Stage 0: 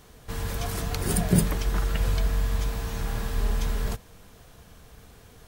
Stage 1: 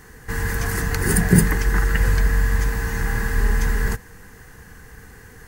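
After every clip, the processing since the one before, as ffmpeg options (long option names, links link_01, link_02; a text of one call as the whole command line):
ffmpeg -i in.wav -af "superequalizer=8b=0.316:11b=2.82:12b=0.708:13b=0.355:14b=0.708,volume=6.5dB" out.wav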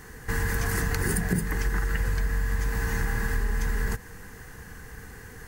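ffmpeg -i in.wav -af "acompressor=threshold=-22dB:ratio=12" out.wav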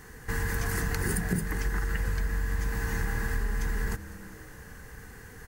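ffmpeg -i in.wav -filter_complex "[0:a]asplit=6[link_01][link_02][link_03][link_04][link_05][link_06];[link_02]adelay=200,afreqshift=-120,volume=-17dB[link_07];[link_03]adelay=400,afreqshift=-240,volume=-22.7dB[link_08];[link_04]adelay=600,afreqshift=-360,volume=-28.4dB[link_09];[link_05]adelay=800,afreqshift=-480,volume=-34dB[link_10];[link_06]adelay=1000,afreqshift=-600,volume=-39.7dB[link_11];[link_01][link_07][link_08][link_09][link_10][link_11]amix=inputs=6:normalize=0,volume=-3dB" out.wav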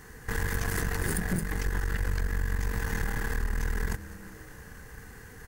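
ffmpeg -i in.wav -af "aeval=exprs='(tanh(17.8*val(0)+0.7)-tanh(0.7))/17.8':channel_layout=same,volume=3.5dB" out.wav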